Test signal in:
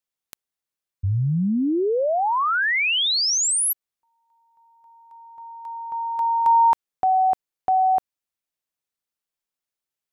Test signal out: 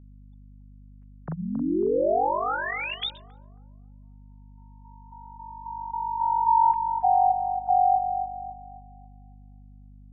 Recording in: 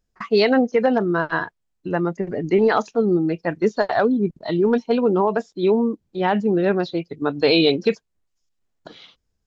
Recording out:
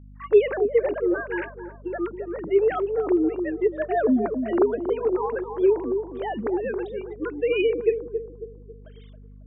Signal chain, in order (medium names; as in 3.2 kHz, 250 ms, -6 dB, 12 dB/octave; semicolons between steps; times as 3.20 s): formants replaced by sine waves; bucket-brigade echo 273 ms, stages 2048, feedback 37%, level -7.5 dB; hum 50 Hz, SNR 21 dB; trim -4.5 dB